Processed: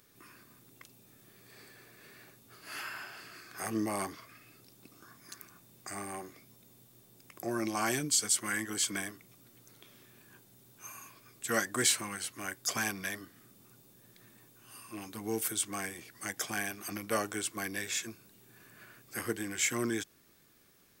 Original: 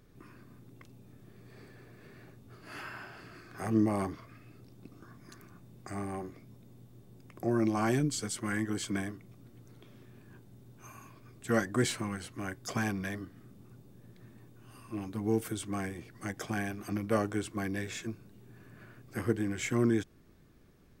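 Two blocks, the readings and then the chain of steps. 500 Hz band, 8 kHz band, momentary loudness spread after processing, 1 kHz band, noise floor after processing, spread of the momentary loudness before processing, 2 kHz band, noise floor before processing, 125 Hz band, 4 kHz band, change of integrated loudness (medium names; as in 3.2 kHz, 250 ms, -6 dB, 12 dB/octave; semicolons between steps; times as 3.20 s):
-4.0 dB, +10.0 dB, 21 LU, 0.0 dB, -64 dBFS, 21 LU, +3.0 dB, -58 dBFS, -10.5 dB, +7.0 dB, 0.0 dB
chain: tilt EQ +3.5 dB/octave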